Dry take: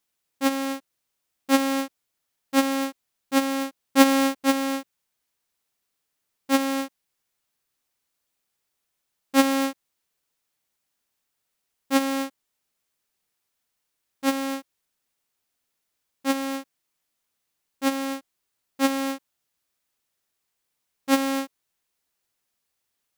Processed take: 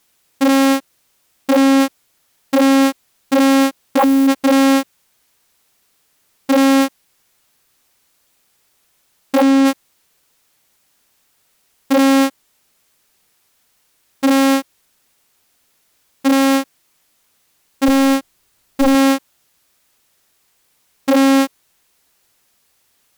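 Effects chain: 17.88–18.95 low shelf 120 Hz +9 dB; sine folder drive 17 dB, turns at -5 dBFS; gain -3.5 dB

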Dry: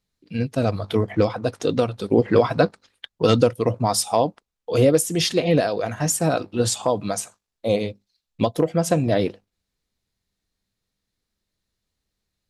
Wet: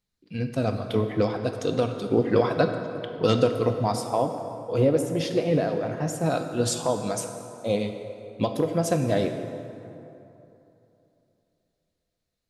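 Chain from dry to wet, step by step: 3.92–6.26 high shelf 2600 Hz -11.5 dB; plate-style reverb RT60 3 s, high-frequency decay 0.55×, DRR 5.5 dB; gain -4.5 dB

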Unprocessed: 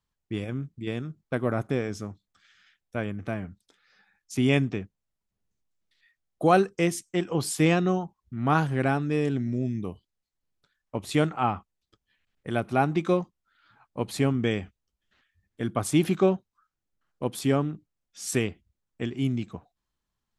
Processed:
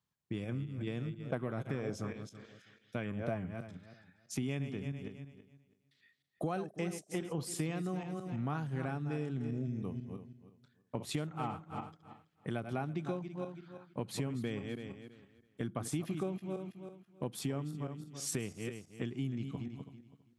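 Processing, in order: regenerating reverse delay 0.164 s, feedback 44%, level -10 dB; HPF 100 Hz; bell 140 Hz +6 dB 1.2 oct; compressor 5:1, threshold -31 dBFS, peak gain reduction 16 dB; 1.25–3.38 LFO bell 1.5 Hz 510–4000 Hz +8 dB; gain -3.5 dB

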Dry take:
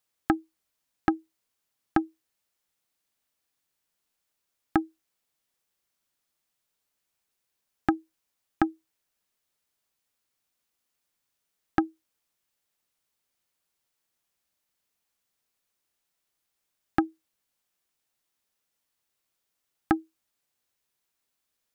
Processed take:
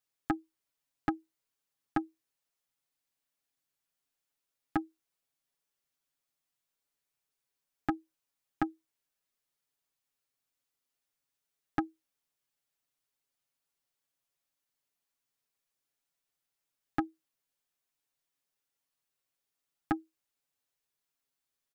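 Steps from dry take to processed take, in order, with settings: comb 7.2 ms, depth 79%; gain -8.5 dB

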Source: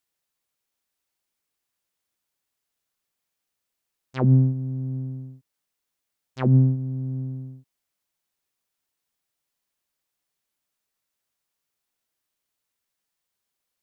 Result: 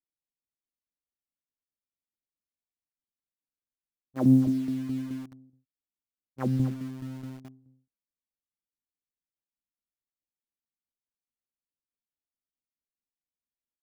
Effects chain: low-pass opened by the level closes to 320 Hz, open at -22.5 dBFS; comb 3.7 ms, depth 35%; 4.16–5.26 small resonant body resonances 290/600 Hz, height 11 dB, ringing for 30 ms; on a send: echo 0.24 s -12.5 dB; on the sum: tremolo saw down 4.7 Hz, depth 60%; in parallel at -6 dB: requantised 6-bit, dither none; on the sum: gain -7.5 dB

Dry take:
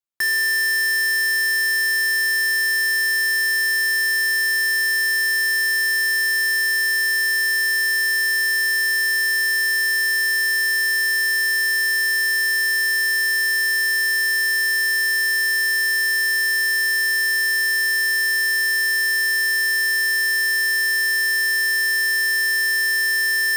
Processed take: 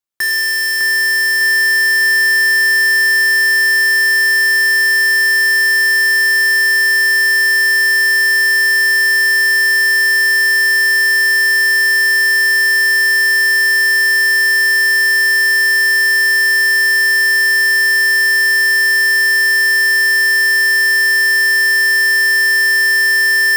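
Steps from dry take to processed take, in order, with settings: split-band echo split 2800 Hz, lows 0.605 s, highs 0.104 s, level -5 dB; gain +4 dB

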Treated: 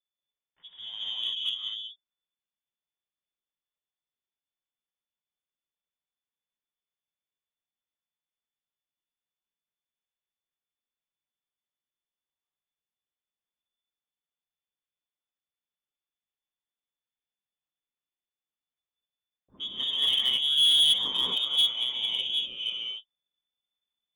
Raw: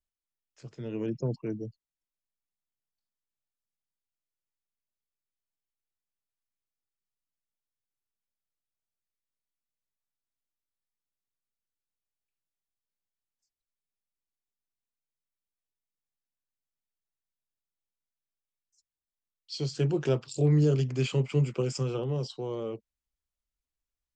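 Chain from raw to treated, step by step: inverted band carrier 3500 Hz; non-linear reverb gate 0.26 s rising, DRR -5.5 dB; added harmonics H 2 -34 dB, 3 -23 dB, 4 -35 dB, 5 -38 dB, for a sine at -13 dBFS; gain -5 dB

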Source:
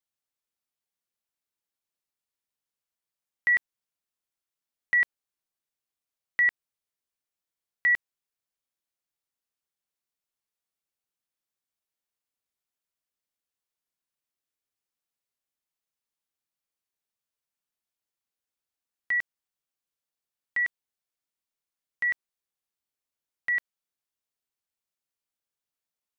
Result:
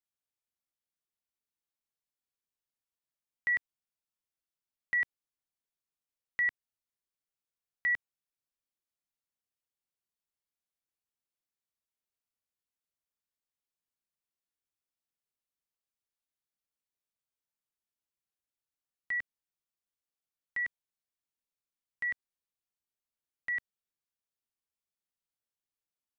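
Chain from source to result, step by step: low shelf 220 Hz +5.5 dB; gain -7 dB

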